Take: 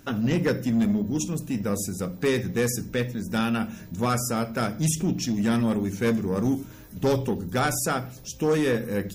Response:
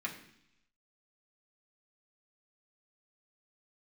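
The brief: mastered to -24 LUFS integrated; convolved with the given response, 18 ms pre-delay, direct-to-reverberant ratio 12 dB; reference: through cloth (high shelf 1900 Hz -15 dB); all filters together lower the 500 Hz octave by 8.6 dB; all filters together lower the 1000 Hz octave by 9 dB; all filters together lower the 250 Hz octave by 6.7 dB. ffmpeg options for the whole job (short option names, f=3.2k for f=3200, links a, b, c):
-filter_complex "[0:a]equalizer=f=250:t=o:g=-6.5,equalizer=f=500:t=o:g=-6,equalizer=f=1k:t=o:g=-5.5,asplit=2[a][b];[1:a]atrim=start_sample=2205,adelay=18[c];[b][c]afir=irnorm=-1:irlink=0,volume=-14.5dB[d];[a][d]amix=inputs=2:normalize=0,highshelf=f=1.9k:g=-15,volume=8.5dB"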